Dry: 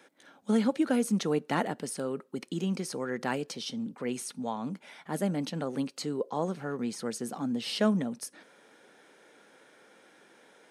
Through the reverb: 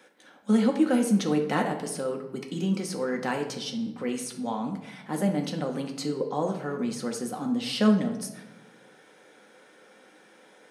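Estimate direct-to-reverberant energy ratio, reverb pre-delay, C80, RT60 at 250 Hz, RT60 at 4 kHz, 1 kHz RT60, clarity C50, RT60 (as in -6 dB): 2.0 dB, 4 ms, 11.5 dB, 1.3 s, 0.70 s, 0.85 s, 8.0 dB, 0.95 s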